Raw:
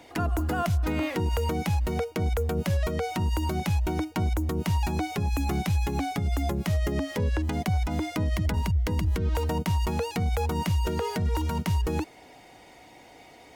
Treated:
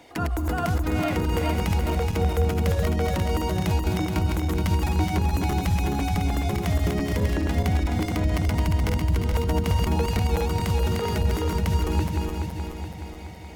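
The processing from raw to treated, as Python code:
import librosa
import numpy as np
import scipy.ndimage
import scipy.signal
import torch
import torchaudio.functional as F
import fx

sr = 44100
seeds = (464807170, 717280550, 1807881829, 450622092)

y = fx.reverse_delay_fb(x, sr, ms=212, feedback_pct=74, wet_db=-3)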